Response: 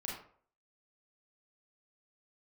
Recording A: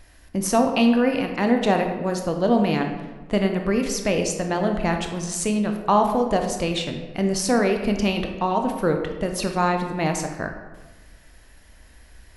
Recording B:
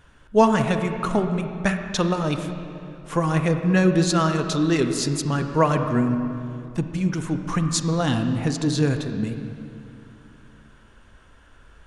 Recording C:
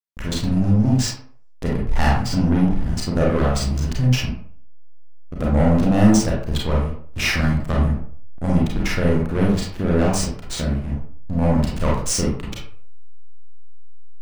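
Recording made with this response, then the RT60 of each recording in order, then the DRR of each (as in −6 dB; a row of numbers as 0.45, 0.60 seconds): C; 1.2, 2.7, 0.55 seconds; 4.0, 6.5, −4.0 decibels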